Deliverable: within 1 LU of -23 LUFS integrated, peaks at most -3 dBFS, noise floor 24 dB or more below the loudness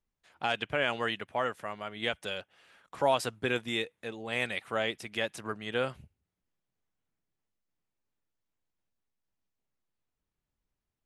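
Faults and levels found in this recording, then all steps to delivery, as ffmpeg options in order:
loudness -33.0 LUFS; peak -15.0 dBFS; loudness target -23.0 LUFS
-> -af "volume=10dB"

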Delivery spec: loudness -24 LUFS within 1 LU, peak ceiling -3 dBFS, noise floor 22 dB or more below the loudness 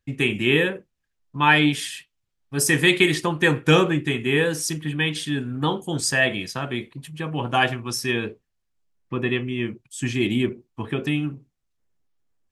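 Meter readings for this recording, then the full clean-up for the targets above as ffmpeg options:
loudness -22.0 LUFS; peak -3.0 dBFS; loudness target -24.0 LUFS
-> -af "volume=-2dB"

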